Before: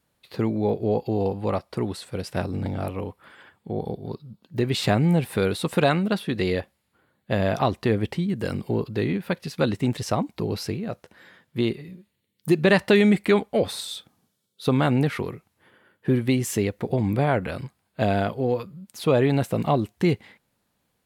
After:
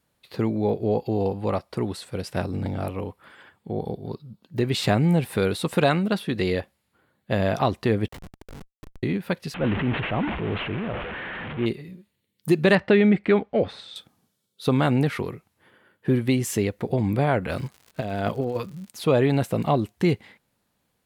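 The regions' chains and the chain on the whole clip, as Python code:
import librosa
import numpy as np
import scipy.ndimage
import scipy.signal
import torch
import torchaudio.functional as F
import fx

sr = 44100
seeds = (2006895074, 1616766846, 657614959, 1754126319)

y = fx.chain(x, sr, fx.weighting(curve='A'),
    fx.over_compress(threshold_db=-38.0, ratio=-0.5),
    fx.schmitt(flips_db=-32.5), at=(8.08, 9.03))
y = fx.chain(y, sr, fx.delta_mod(bps=16000, step_db=-27.5),
    fx.transient(attack_db=-5, sustain_db=7), at=(9.54, 11.66))
y = fx.chain(y, sr, fx.lowpass(hz=2500.0, slope=12),
    fx.peak_eq(hz=990.0, db=-4.5, octaves=0.34), at=(12.75, 13.96))
y = fx.over_compress(y, sr, threshold_db=-25.0, ratio=-0.5, at=(17.49, 18.89), fade=0.02)
y = fx.dmg_crackle(y, sr, seeds[0], per_s=160.0, level_db=-38.0, at=(17.49, 18.89), fade=0.02)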